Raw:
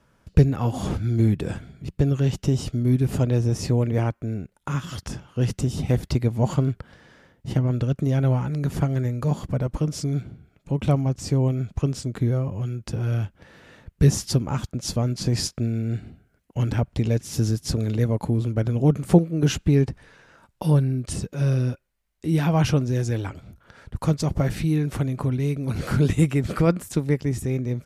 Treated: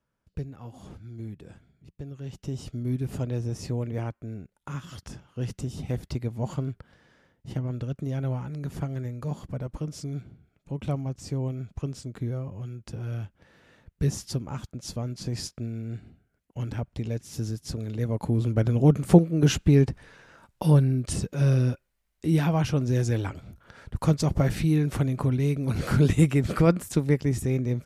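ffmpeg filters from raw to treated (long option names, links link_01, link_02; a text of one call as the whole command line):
ffmpeg -i in.wav -af "volume=6.5dB,afade=type=in:start_time=2.16:duration=0.61:silence=0.316228,afade=type=in:start_time=17.93:duration=0.6:silence=0.375837,afade=type=out:start_time=22.27:duration=0.43:silence=0.446684,afade=type=in:start_time=22.7:duration=0.19:silence=0.473151" out.wav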